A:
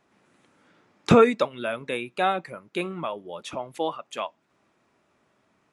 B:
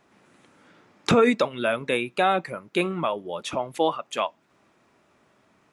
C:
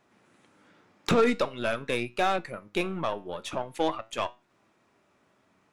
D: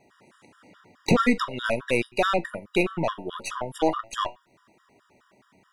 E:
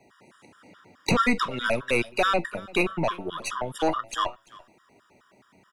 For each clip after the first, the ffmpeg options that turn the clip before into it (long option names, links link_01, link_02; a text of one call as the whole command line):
ffmpeg -i in.wav -af "alimiter=level_in=13dB:limit=-1dB:release=50:level=0:latency=1,volume=-8dB" out.wav
ffmpeg -i in.wav -af "aeval=exprs='0.376*(cos(1*acos(clip(val(0)/0.376,-1,1)))-cos(1*PI/2))+0.0211*(cos(8*acos(clip(val(0)/0.376,-1,1)))-cos(8*PI/2))':channel_layout=same,flanger=delay=8.1:depth=3.2:regen=82:speed=0.46:shape=triangular" out.wav
ffmpeg -i in.wav -filter_complex "[0:a]asplit=2[link_01][link_02];[link_02]alimiter=limit=-22.5dB:level=0:latency=1:release=32,volume=-1dB[link_03];[link_01][link_03]amix=inputs=2:normalize=0,afftfilt=real='re*gt(sin(2*PI*4.7*pts/sr)*(1-2*mod(floor(b*sr/1024/960),2)),0)':imag='im*gt(sin(2*PI*4.7*pts/sr)*(1-2*mod(floor(b*sr/1024/960),2)),0)':win_size=1024:overlap=0.75,volume=3dB" out.wav
ffmpeg -i in.wav -filter_complex "[0:a]acrossover=split=120|770|4600[link_01][link_02][link_03][link_04];[link_02]asoftclip=type=tanh:threshold=-22dB[link_05];[link_01][link_05][link_03][link_04]amix=inputs=4:normalize=0,aecho=1:1:341:0.0794,volume=1.5dB" out.wav